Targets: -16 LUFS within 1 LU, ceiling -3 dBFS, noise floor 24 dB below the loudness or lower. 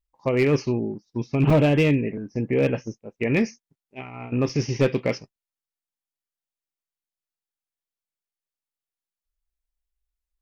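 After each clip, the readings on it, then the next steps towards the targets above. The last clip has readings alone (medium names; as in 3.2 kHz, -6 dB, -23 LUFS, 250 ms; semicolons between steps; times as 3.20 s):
clipped samples 0.3%; clipping level -12.5 dBFS; dropouts 2; longest dropout 3.6 ms; loudness -23.5 LUFS; peak level -12.5 dBFS; loudness target -16.0 LUFS
-> clip repair -12.5 dBFS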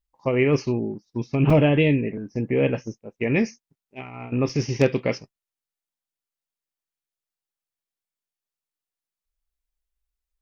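clipped samples 0.0%; dropouts 2; longest dropout 3.6 ms
-> interpolate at 1.50/4.49 s, 3.6 ms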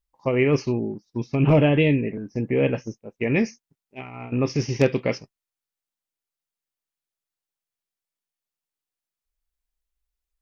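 dropouts 0; loudness -23.0 LUFS; peak level -5.0 dBFS; loudness target -16.0 LUFS
-> trim +7 dB; peak limiter -3 dBFS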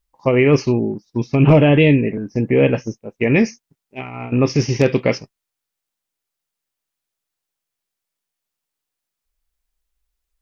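loudness -16.5 LUFS; peak level -3.0 dBFS; noise floor -83 dBFS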